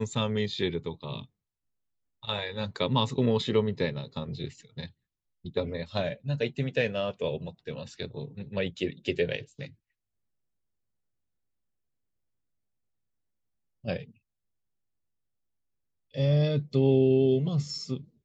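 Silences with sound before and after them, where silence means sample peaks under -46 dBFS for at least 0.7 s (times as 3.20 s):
1.25–2.23 s
9.72–13.84 s
14.11–16.14 s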